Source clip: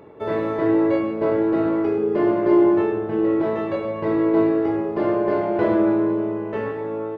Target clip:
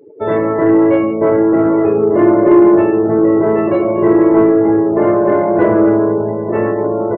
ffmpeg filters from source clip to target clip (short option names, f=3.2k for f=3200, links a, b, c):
-filter_complex "[0:a]asplit=2[a][b];[b]adelay=1516,volume=-6dB,highshelf=f=4k:g=-34.1[c];[a][c]amix=inputs=2:normalize=0,afftdn=nr=33:nf=-35,acontrast=81,volume=2dB"